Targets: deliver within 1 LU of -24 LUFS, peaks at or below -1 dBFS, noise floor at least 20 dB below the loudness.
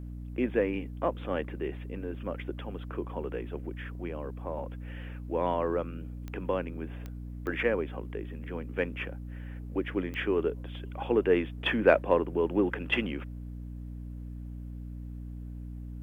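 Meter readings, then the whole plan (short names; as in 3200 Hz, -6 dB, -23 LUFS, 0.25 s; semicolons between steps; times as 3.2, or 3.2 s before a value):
clicks 4; hum 60 Hz; harmonics up to 300 Hz; hum level -37 dBFS; loudness -32.5 LUFS; peak -7.0 dBFS; loudness target -24.0 LUFS
-> de-click; notches 60/120/180/240/300 Hz; gain +8.5 dB; limiter -1 dBFS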